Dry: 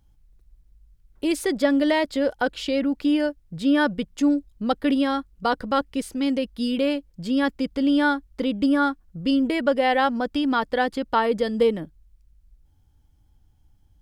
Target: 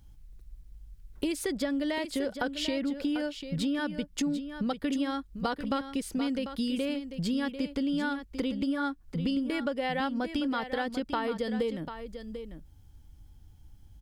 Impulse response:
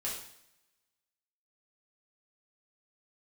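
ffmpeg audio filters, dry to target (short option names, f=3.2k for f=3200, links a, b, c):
-filter_complex "[0:a]equalizer=f=740:t=o:w=2.3:g=-4,acompressor=threshold=-35dB:ratio=6,asplit=2[a][b];[b]aecho=0:1:744:0.316[c];[a][c]amix=inputs=2:normalize=0,volume=6dB"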